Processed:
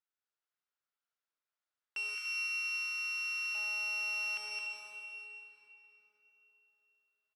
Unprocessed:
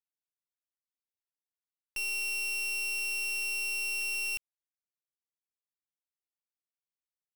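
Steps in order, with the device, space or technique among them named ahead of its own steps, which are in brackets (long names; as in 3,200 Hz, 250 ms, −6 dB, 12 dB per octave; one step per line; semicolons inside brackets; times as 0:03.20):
station announcement (band-pass filter 390–4,900 Hz; parametric band 1,400 Hz +9 dB 0.54 octaves; loudspeakers that aren't time-aligned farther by 74 metres −4 dB, 100 metres −11 dB; convolution reverb RT60 3.9 s, pre-delay 63 ms, DRR −0.5 dB)
0:02.15–0:03.55: Chebyshev high-pass filter 990 Hz, order 10
level −2.5 dB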